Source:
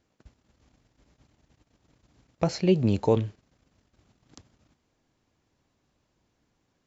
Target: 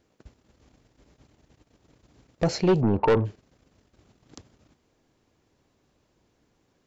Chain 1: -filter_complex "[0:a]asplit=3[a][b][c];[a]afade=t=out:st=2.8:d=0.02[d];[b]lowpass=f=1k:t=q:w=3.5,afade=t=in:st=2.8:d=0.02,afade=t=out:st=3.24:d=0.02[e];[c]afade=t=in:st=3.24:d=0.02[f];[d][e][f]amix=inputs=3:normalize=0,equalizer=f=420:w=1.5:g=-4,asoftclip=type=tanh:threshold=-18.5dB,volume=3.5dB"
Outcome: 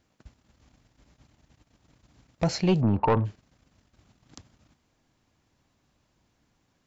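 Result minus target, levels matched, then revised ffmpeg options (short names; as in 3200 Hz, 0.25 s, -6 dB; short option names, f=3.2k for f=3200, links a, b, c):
500 Hz band -3.5 dB
-filter_complex "[0:a]asplit=3[a][b][c];[a]afade=t=out:st=2.8:d=0.02[d];[b]lowpass=f=1k:t=q:w=3.5,afade=t=in:st=2.8:d=0.02,afade=t=out:st=3.24:d=0.02[e];[c]afade=t=in:st=3.24:d=0.02[f];[d][e][f]amix=inputs=3:normalize=0,equalizer=f=420:w=1.5:g=4.5,asoftclip=type=tanh:threshold=-18.5dB,volume=3.5dB"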